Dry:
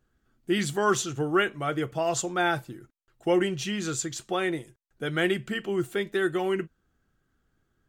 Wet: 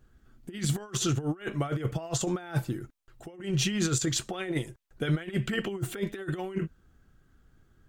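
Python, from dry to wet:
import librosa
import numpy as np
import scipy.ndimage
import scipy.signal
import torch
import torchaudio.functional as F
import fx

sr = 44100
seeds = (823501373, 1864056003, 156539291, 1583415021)

y = fx.over_compress(x, sr, threshold_db=-32.0, ratio=-0.5)
y = fx.low_shelf(y, sr, hz=150.0, db=8.0)
y = fx.bell_lfo(y, sr, hz=4.6, low_hz=480.0, high_hz=3400.0, db=7, at=(4.06, 6.35))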